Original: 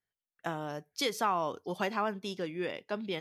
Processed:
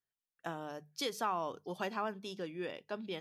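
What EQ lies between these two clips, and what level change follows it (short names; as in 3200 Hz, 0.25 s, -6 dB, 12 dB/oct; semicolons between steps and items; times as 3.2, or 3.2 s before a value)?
notches 50/100/150/200 Hz; notch 2100 Hz, Q 10; -5.0 dB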